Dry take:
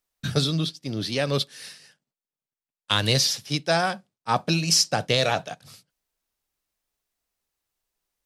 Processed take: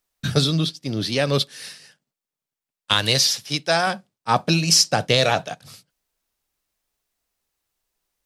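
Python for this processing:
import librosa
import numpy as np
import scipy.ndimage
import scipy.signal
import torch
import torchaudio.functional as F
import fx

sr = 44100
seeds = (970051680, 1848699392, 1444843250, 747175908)

y = fx.low_shelf(x, sr, hz=440.0, db=-6.5, at=(2.93, 3.87))
y = y * 10.0 ** (4.0 / 20.0)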